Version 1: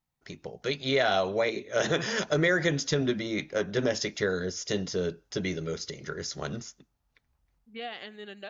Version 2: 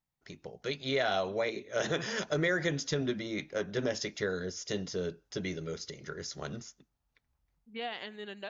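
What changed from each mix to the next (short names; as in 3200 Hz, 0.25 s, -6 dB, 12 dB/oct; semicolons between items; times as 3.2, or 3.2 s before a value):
first voice -5.0 dB; second voice: remove Butterworth band-stop 960 Hz, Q 6.5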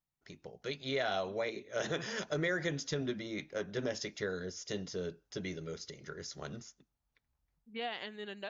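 first voice -4.0 dB; second voice: send -9.0 dB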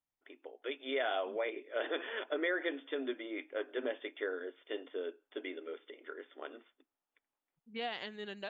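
first voice: add brick-wall FIR band-pass 250–3600 Hz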